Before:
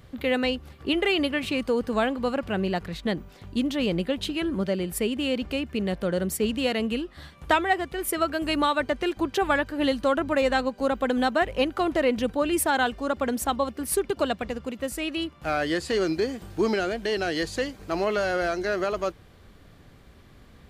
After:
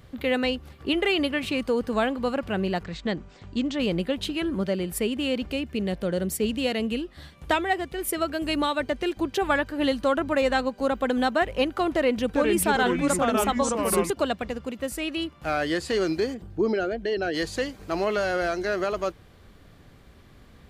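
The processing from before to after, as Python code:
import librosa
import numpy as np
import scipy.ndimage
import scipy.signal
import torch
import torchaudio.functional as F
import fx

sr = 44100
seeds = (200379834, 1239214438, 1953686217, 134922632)

y = fx.cheby1_lowpass(x, sr, hz=8200.0, order=8, at=(2.83, 3.78), fade=0.02)
y = fx.peak_eq(y, sr, hz=1200.0, db=-4.0, octaves=1.2, at=(5.46, 9.44))
y = fx.echo_pitch(y, sr, ms=394, semitones=-3, count=2, db_per_echo=-3.0, at=(11.94, 14.1))
y = fx.envelope_sharpen(y, sr, power=1.5, at=(16.33, 17.33), fade=0.02)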